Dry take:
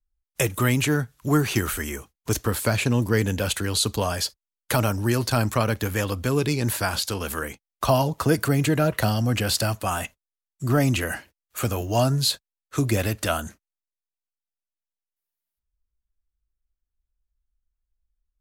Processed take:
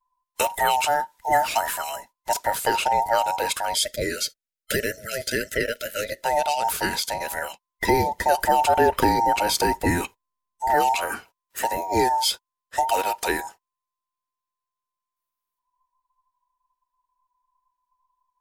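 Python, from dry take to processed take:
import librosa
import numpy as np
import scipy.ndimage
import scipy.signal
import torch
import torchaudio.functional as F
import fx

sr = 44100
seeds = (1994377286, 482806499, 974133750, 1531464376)

y = fx.band_invert(x, sr, width_hz=1000)
y = fx.spec_erase(y, sr, start_s=3.75, length_s=2.49, low_hz=650.0, high_hz=1300.0)
y = fx.low_shelf(y, sr, hz=370.0, db=10.5, at=(8.38, 10.71))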